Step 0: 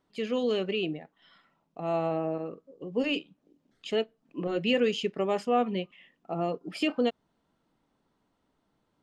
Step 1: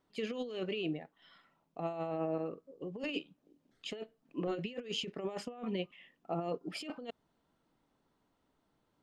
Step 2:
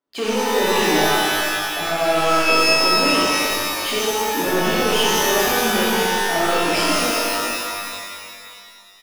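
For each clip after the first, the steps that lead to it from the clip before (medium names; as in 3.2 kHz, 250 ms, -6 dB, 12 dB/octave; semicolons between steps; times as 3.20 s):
peaking EQ 200 Hz -2.5 dB 0.43 oct; compressor with a negative ratio -31 dBFS, ratio -0.5; trim -5.5 dB
waveshaping leveller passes 5; bands offset in time highs, lows 70 ms, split 170 Hz; pitch-shifted reverb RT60 2.2 s, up +12 st, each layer -2 dB, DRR -6.5 dB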